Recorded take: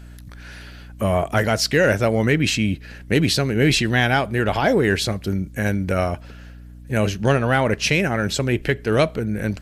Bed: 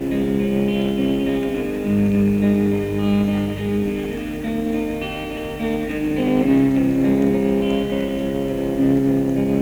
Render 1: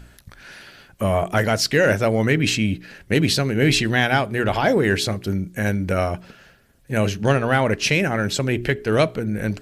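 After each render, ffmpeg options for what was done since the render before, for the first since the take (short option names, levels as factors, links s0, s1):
-af "bandreject=f=60:t=h:w=4,bandreject=f=120:t=h:w=4,bandreject=f=180:t=h:w=4,bandreject=f=240:t=h:w=4,bandreject=f=300:t=h:w=4,bandreject=f=360:t=h:w=4,bandreject=f=420:t=h:w=4"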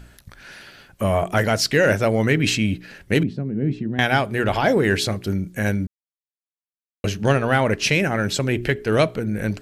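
-filter_complex "[0:a]asettb=1/sr,asplit=3[s0][s1][s2];[s0]atrim=end=3.234[s3];[s1]atrim=start=3.23:end=3.99,asetpts=PTS-STARTPTS,afade=t=in:d=0.004:c=qsin,afade=t=out:st=0.756:d=0.004:c=qsin,bandpass=f=200:t=q:w=1.6[s4];[s2]atrim=start=3.986[s5];[s3][s4]acrossfade=d=0.004:c1=hsin:c2=qsin[s6];[s6][s5]acrossfade=d=0.004:c1=qsin:c2=hsin,asplit=3[s7][s8][s9];[s7]atrim=end=5.87,asetpts=PTS-STARTPTS,afade=t=out:st=5.866:d=0.004:c=hsin[s10];[s8]atrim=start=5.87:end=7.04,asetpts=PTS-STARTPTS,volume=0[s11];[s9]atrim=start=7.04,asetpts=PTS-STARTPTS,afade=t=in:d=0.004:c=hsin[s12];[s10][s11][s12]concat=n=3:v=0:a=1"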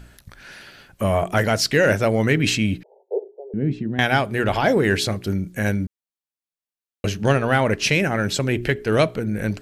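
-filter_complex "[0:a]asettb=1/sr,asplit=3[s0][s1][s2];[s0]atrim=end=2.834[s3];[s1]atrim=start=2.83:end=3.54,asetpts=PTS-STARTPTS,afade=t=in:d=0.004:c=qsin,afade=t=out:st=0.706:d=0.004:c=qsin,asuperpass=centerf=590:order=20:qfactor=1.1[s4];[s2]atrim=start=3.536[s5];[s3][s4]acrossfade=d=0.004:c1=hsin:c2=qsin[s6];[s6][s5]acrossfade=d=0.004:c1=qsin:c2=hsin"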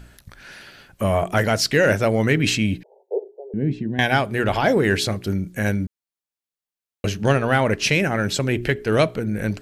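-filter_complex "[0:a]asettb=1/sr,asplit=3[s0][s1][s2];[s0]atrim=end=2.624[s3];[s1]atrim=start=2.62:end=4.12,asetpts=PTS-STARTPTS,afade=t=in:d=0.004:c=qsin,afade=t=out:st=1.496:d=0.004:c=qsin,asuperstop=centerf=1300:order=8:qfactor=4.5[s4];[s2]atrim=start=4.116[s5];[s3][s4]acrossfade=d=0.004:c1=hsin:c2=qsin[s6];[s6][s5]acrossfade=d=0.004:c1=qsin:c2=hsin"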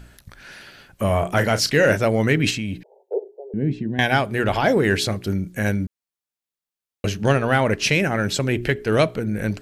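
-filter_complex "[0:a]asettb=1/sr,asplit=3[s0][s1][s2];[s0]atrim=end=1.054[s3];[s1]atrim=start=1.05:end=1.97,asetpts=PTS-STARTPTS,afade=t=in:d=0.004:c=qsin,afade=t=out:st=0.916:d=0.004:c=qsin,asplit=2[s4][s5];[s5]adelay=34,volume=0.282[s6];[s4][s6]amix=inputs=2:normalize=0,atrim=end_sample=40572[s7];[s2]atrim=start=1.966[s8];[s3][s7]acrossfade=d=0.004:c1=hsin:c2=qsin[s9];[s9][s8]acrossfade=d=0.004:c1=qsin:c2=hsin,asettb=1/sr,asplit=3[s10][s11][s12];[s10]atrim=end=2.504[s13];[s11]atrim=start=2.5:end=3.14,asetpts=PTS-STARTPTS,afade=t=in:d=0.004:c=qsin,afade=t=out:st=0.636:d=0.004:c=qsin,acompressor=threshold=0.0708:ratio=5:attack=3.2:release=140:knee=1:detection=peak[s14];[s12]atrim=start=3.136[s15];[s13][s14]acrossfade=d=0.004:c1=hsin:c2=qsin[s16];[s16][s15]acrossfade=d=0.004:c1=qsin:c2=hsin"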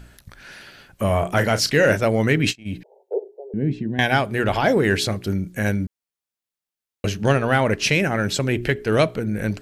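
-filter_complex "[0:a]asplit=3[s0][s1][s2];[s0]afade=t=out:st=2:d=0.02[s3];[s1]agate=range=0.02:threshold=0.0631:ratio=16:release=100:detection=peak,afade=t=in:st=2:d=0.02,afade=t=out:st=2.65:d=0.02[s4];[s2]afade=t=in:st=2.65:d=0.02[s5];[s3][s4][s5]amix=inputs=3:normalize=0"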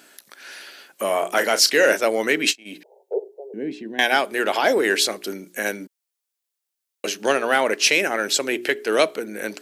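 -af "highpass=f=300:w=0.5412,highpass=f=300:w=1.3066,highshelf=f=3600:g=8"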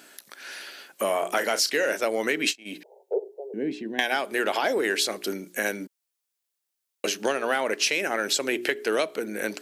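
-af "acompressor=threshold=0.0891:ratio=6"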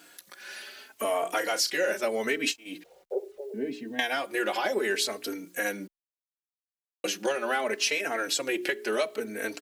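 -filter_complex "[0:a]acrusher=bits=9:mix=0:aa=0.000001,asplit=2[s0][s1];[s1]adelay=3.8,afreqshift=0.72[s2];[s0][s2]amix=inputs=2:normalize=1"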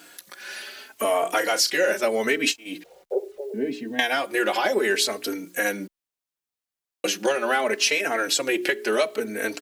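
-af "volume=1.88"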